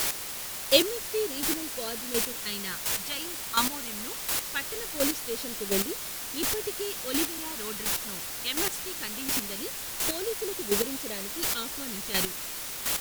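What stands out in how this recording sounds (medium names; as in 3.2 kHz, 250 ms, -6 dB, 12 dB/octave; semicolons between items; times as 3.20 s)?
phasing stages 2, 0.21 Hz, lowest notch 500–1200 Hz; a quantiser's noise floor 6-bit, dither triangular; chopped level 1.4 Hz, depth 65%, duty 15%; AAC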